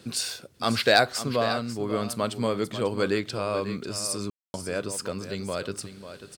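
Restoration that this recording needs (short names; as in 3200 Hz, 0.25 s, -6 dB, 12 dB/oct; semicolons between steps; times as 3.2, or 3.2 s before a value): clip repair -6.5 dBFS; room tone fill 4.3–4.54; inverse comb 0.543 s -11.5 dB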